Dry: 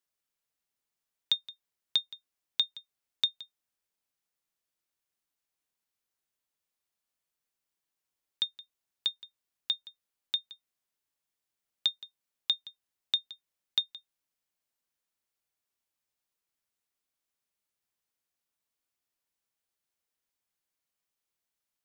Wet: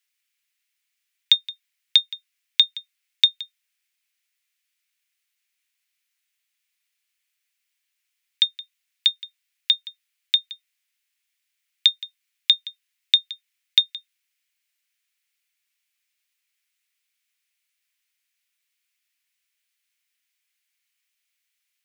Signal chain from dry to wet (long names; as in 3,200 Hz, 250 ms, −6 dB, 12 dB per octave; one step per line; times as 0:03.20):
high-pass with resonance 2,200 Hz, resonance Q 2.3
level +8.5 dB